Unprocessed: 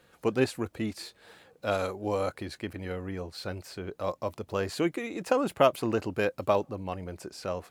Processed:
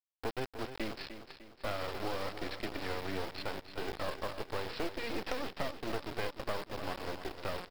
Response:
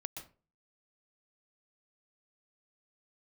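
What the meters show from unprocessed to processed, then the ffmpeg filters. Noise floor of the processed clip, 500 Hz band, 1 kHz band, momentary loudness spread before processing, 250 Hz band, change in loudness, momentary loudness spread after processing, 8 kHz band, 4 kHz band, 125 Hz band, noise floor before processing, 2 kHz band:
−62 dBFS, −10.5 dB, −7.0 dB, 12 LU, −10.0 dB, −8.5 dB, 4 LU, −7.5 dB, −1.5 dB, −8.5 dB, −65 dBFS, −3.5 dB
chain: -filter_complex "[0:a]highpass=frequency=160:width=0.5412,highpass=frequency=160:width=1.3066,bandreject=frequency=60:width_type=h:width=6,bandreject=frequency=120:width_type=h:width=6,bandreject=frequency=180:width_type=h:width=6,bandreject=frequency=240:width_type=h:width=6,bandreject=frequency=300:width_type=h:width=6,bandreject=frequency=360:width_type=h:width=6,bandreject=frequency=420:width_type=h:width=6,bandreject=frequency=480:width_type=h:width=6,bandreject=frequency=540:width_type=h:width=6,bandreject=frequency=600:width_type=h:width=6,afftfilt=real='re*gte(hypot(re,im),0.00708)':imag='im*gte(hypot(re,im),0.00708)':win_size=1024:overlap=0.75,acrossover=split=240 3600:gain=0.0794 1 0.0891[link_01][link_02][link_03];[link_01][link_02][link_03]amix=inputs=3:normalize=0,acompressor=threshold=-38dB:ratio=10,aresample=11025,acrusher=bits=5:dc=4:mix=0:aa=0.000001,aresample=44100,asoftclip=type=tanh:threshold=-31.5dB,acrusher=bits=4:mode=log:mix=0:aa=0.000001,asplit=2[link_04][link_05];[link_05]aecho=0:1:301|602|903|1204|1505:0.299|0.137|0.0632|0.0291|0.0134[link_06];[link_04][link_06]amix=inputs=2:normalize=0,volume=8.5dB"

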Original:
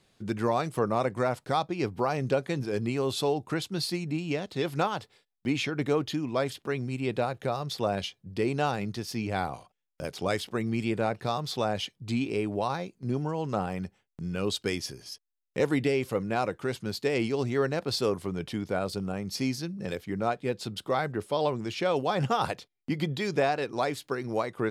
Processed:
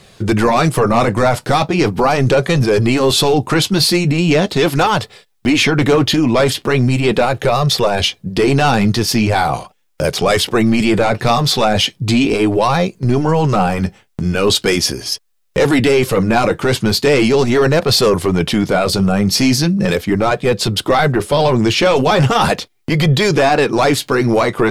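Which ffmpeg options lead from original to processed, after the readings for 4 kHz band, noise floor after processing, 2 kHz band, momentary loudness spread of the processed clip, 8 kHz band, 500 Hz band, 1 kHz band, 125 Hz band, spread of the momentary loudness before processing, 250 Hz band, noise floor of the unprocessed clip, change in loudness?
+19.0 dB, −56 dBFS, +17.0 dB, 4 LU, +20.0 dB, +15.0 dB, +15.0 dB, +17.0 dB, 7 LU, +16.0 dB, −78 dBFS, +16.0 dB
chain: -af "apsyclip=29.5dB,flanger=delay=1.6:depth=7.6:regen=-54:speed=0.39:shape=sinusoidal,volume=-4dB"

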